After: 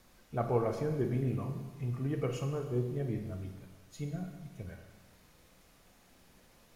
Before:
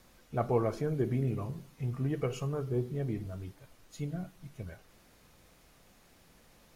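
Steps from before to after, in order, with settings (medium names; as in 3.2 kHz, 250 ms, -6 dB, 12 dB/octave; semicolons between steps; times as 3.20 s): Schroeder reverb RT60 1.3 s, combs from 33 ms, DRR 5.5 dB; trim -2 dB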